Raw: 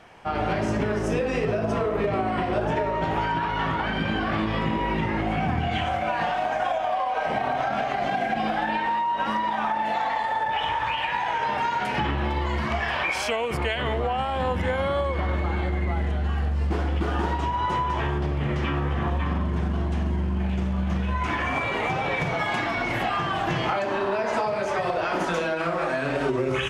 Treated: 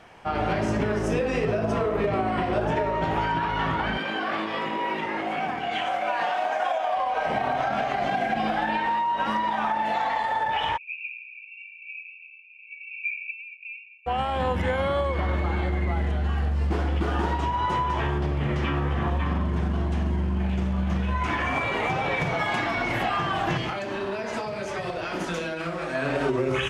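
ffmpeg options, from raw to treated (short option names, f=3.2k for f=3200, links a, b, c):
-filter_complex "[0:a]asettb=1/sr,asplit=3[a][b][c];[a]atrim=end=3.974[d];[b]atrim=start=3.97:end=6.97,asetpts=PTS-STARTPTS,afade=t=in:d=0.004:c=qsin,afade=t=out:st=2.996:d=0.004:c=qsin,highpass=360[e];[c]atrim=start=6.966[f];[d][e]acrossfade=d=0.004:c1=hsin:c2=qsin[g];[g][f]acrossfade=d=0.004:c1=qsin:c2=hsin,asplit=3[h][i][j];[h]afade=t=out:st=10.76:d=0.02[k];[i]asuperpass=centerf=2500:order=20:qfactor=5.3,afade=t=in:st=10.76:d=0.02,afade=t=out:st=14.06:d=0.02[l];[j]afade=t=in:st=14.06:d=0.02[m];[k][l][m]amix=inputs=3:normalize=0,asettb=1/sr,asplit=3[n][o][p];[n]atrim=end=23.574[q];[o]atrim=start=23.57:end=25.95,asetpts=PTS-STARTPTS,afade=t=in:d=0.004:c=qsin,afade=t=out:st=2.376:d=0.004:c=qsin,equalizer=f=870:t=o:w=2:g=-8[r];[p]atrim=start=25.946[s];[q][r]acrossfade=d=0.004:c1=hsin:c2=qsin[t];[t][s]acrossfade=d=0.004:c1=qsin:c2=hsin"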